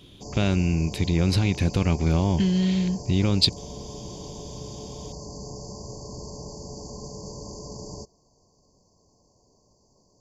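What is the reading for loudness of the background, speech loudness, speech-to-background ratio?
-38.5 LUFS, -23.5 LUFS, 15.0 dB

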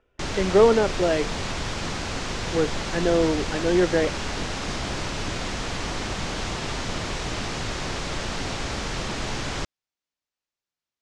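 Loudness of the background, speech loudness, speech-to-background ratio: -29.5 LUFS, -23.0 LUFS, 6.5 dB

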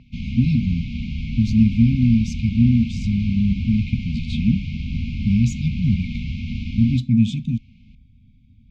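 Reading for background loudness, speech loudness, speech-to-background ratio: -28.5 LUFS, -20.5 LUFS, 8.0 dB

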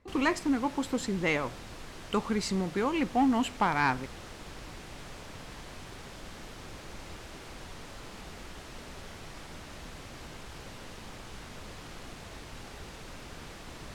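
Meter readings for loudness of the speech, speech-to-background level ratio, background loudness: -29.5 LUFS, 16.0 dB, -45.5 LUFS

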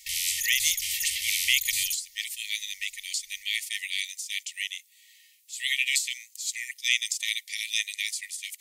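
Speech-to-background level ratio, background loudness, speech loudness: -1.0 dB, -27.5 LUFS, -28.5 LUFS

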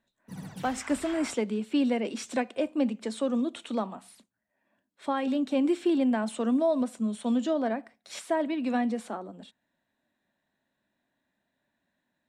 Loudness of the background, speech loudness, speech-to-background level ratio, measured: -44.0 LUFS, -29.0 LUFS, 15.0 dB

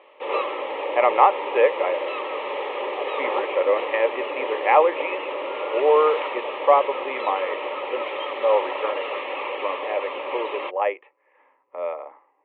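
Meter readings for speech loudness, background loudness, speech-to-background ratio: -23.0 LUFS, -28.5 LUFS, 5.5 dB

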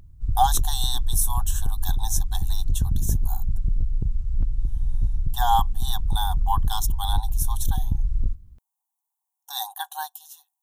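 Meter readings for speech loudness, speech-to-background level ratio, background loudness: -28.5 LUFS, 0.0 dB, -28.5 LUFS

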